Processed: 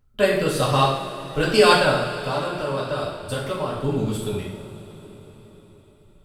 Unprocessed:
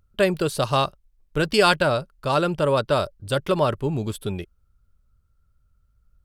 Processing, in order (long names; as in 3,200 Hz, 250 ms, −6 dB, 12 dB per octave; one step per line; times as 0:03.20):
0:01.91–0:03.75: downward compressor, threshold −25 dBFS, peak gain reduction 9.5 dB
convolution reverb, pre-delay 3 ms, DRR −6.5 dB
level −4.5 dB